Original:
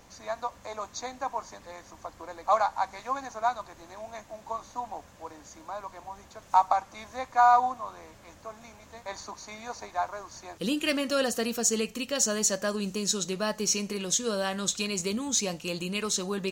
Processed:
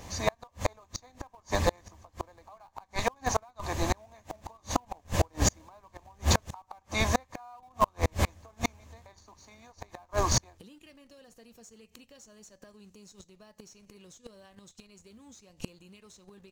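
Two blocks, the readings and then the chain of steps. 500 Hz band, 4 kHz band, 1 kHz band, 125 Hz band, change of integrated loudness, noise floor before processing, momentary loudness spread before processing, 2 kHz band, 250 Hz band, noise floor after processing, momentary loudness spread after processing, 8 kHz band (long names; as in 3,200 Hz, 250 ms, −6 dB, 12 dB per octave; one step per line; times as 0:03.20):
−4.0 dB, −4.5 dB, −7.5 dB, +8.5 dB, −3.0 dB, −54 dBFS, 20 LU, −2.5 dB, −5.0 dB, −66 dBFS, 21 LU, −6.5 dB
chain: camcorder AGC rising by 32 dB per second
parametric band 82 Hz +14.5 dB 0.58 octaves
notch filter 1,400 Hz, Q 6.8
in parallel at −10 dB: comparator with hysteresis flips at −24.5 dBFS
on the sum: gate with flip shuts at −18 dBFS, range −37 dB
level +6.5 dB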